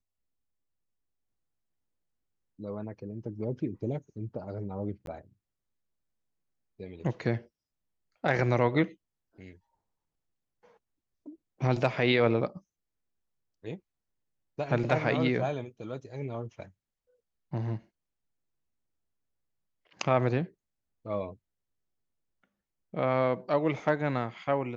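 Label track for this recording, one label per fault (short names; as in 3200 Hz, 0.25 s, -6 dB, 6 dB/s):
5.060000	5.070000	gap 12 ms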